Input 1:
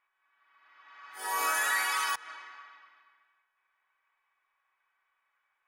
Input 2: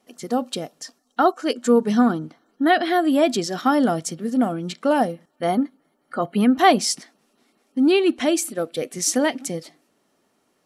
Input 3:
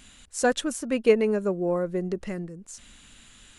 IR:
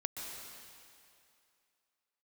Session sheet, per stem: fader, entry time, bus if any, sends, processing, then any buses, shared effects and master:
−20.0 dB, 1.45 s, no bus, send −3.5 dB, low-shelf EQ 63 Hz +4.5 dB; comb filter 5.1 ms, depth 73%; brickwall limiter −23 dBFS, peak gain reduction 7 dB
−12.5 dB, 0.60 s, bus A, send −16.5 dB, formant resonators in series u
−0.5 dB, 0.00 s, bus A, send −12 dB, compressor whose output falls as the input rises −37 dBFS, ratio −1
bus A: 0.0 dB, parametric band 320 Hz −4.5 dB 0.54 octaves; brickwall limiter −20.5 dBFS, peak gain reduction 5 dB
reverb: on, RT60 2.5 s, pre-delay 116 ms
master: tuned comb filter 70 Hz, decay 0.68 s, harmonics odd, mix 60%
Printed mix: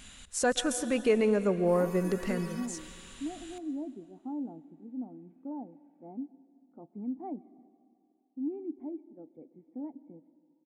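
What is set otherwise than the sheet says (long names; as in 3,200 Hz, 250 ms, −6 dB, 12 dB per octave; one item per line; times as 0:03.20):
stem 1: entry 1.45 s → 0.50 s
stem 3: missing compressor whose output falls as the input rises −37 dBFS, ratio −1
master: missing tuned comb filter 70 Hz, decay 0.68 s, harmonics odd, mix 60%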